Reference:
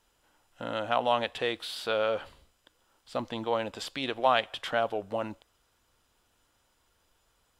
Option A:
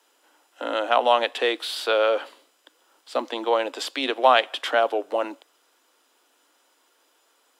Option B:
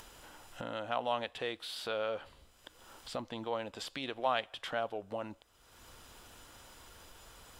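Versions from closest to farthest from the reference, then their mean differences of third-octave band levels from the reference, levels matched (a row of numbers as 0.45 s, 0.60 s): B, A; 1.0 dB, 4.0 dB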